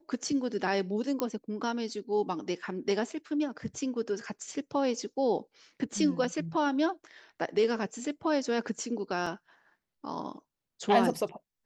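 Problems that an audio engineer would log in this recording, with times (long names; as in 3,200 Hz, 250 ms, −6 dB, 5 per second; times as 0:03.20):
0:01.20: click −15 dBFS
0:09.26: drop-out 4.1 ms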